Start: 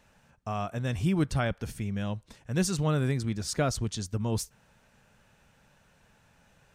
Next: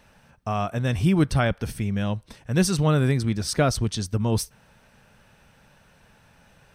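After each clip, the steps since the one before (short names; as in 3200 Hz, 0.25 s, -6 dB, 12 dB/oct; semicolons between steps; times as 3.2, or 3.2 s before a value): notch 7000 Hz, Q 5.6; gain +6.5 dB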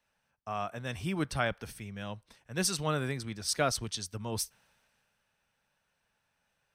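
low shelf 430 Hz -11 dB; three-band expander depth 40%; gain -5.5 dB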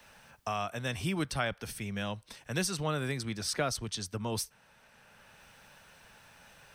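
three-band squash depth 70%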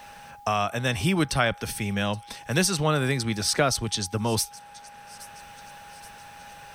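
thin delay 0.823 s, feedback 54%, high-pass 5200 Hz, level -17 dB; whine 820 Hz -54 dBFS; gain +9 dB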